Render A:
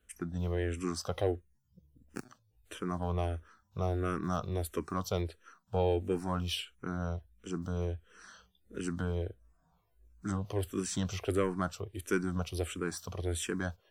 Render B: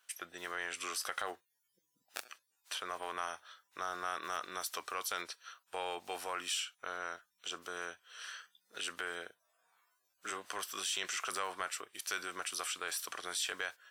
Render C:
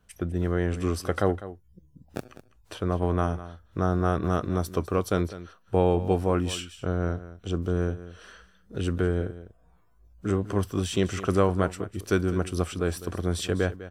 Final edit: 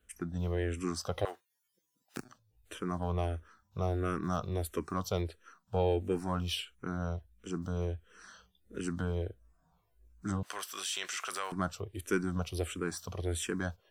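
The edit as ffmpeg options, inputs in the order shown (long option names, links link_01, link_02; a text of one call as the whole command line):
ffmpeg -i take0.wav -i take1.wav -filter_complex "[1:a]asplit=2[link_01][link_02];[0:a]asplit=3[link_03][link_04][link_05];[link_03]atrim=end=1.252[link_06];[link_01]atrim=start=1.248:end=2.172[link_07];[link_04]atrim=start=2.168:end=10.432[link_08];[link_02]atrim=start=10.428:end=11.522[link_09];[link_05]atrim=start=11.518[link_10];[link_06][link_07]acrossfade=duration=0.004:curve1=hsin:curve2=hsin[link_11];[link_11][link_08]acrossfade=duration=0.004:curve1=hsin:curve2=hsin[link_12];[link_12][link_09]acrossfade=duration=0.004:curve1=hsin:curve2=hsin[link_13];[link_13][link_10]acrossfade=duration=0.004:curve1=hsin:curve2=hsin" out.wav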